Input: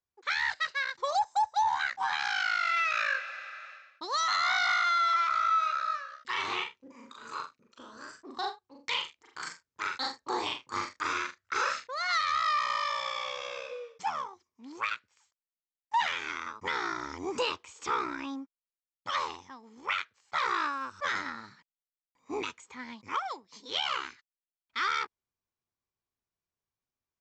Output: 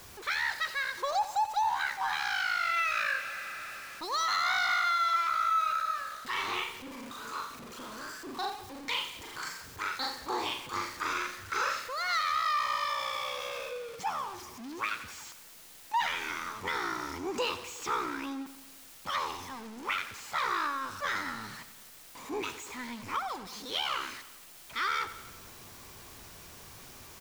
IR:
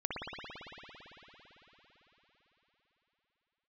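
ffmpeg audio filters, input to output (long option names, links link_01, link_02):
-af "aeval=exprs='val(0)+0.5*0.0126*sgn(val(0))':channel_layout=same,aecho=1:1:89|178|267|356|445|534:0.188|0.111|0.0656|0.0387|0.0228|0.0135,volume=-2.5dB"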